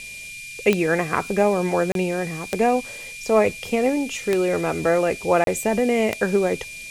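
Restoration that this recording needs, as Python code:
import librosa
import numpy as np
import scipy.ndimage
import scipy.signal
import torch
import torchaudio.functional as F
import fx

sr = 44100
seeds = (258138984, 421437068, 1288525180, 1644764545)

y = fx.fix_declick_ar(x, sr, threshold=10.0)
y = fx.notch(y, sr, hz=2400.0, q=30.0)
y = fx.fix_interpolate(y, sr, at_s=(1.92, 5.44), length_ms=32.0)
y = fx.noise_reduce(y, sr, print_start_s=0.09, print_end_s=0.59, reduce_db=30.0)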